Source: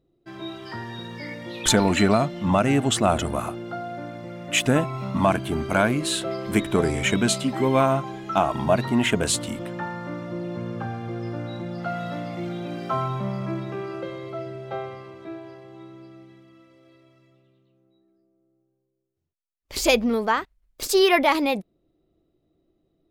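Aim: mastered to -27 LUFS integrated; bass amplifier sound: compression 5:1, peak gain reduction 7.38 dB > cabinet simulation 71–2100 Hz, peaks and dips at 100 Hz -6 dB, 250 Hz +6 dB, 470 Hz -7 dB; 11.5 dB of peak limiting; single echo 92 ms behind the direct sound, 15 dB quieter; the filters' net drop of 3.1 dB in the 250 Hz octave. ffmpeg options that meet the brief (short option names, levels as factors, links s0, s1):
-af "equalizer=f=250:t=o:g=-7,alimiter=limit=0.119:level=0:latency=1,aecho=1:1:92:0.178,acompressor=threshold=0.0316:ratio=5,highpass=f=71:w=0.5412,highpass=f=71:w=1.3066,equalizer=f=100:t=q:w=4:g=-6,equalizer=f=250:t=q:w=4:g=6,equalizer=f=470:t=q:w=4:g=-7,lowpass=f=2100:w=0.5412,lowpass=f=2100:w=1.3066,volume=2.66"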